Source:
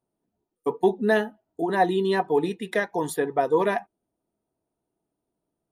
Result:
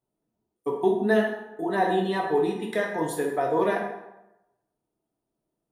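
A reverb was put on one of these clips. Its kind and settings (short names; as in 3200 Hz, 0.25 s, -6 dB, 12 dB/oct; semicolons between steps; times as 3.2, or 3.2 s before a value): plate-style reverb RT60 0.92 s, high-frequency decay 0.65×, DRR -0.5 dB; gain -4.5 dB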